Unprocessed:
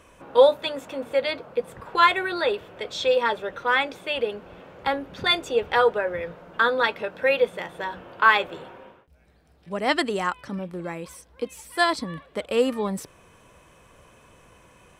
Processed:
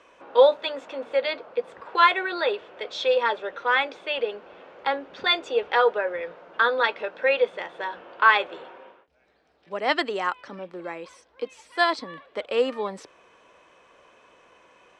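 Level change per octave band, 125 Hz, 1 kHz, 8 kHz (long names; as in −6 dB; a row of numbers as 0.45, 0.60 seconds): below −10 dB, 0.0 dB, can't be measured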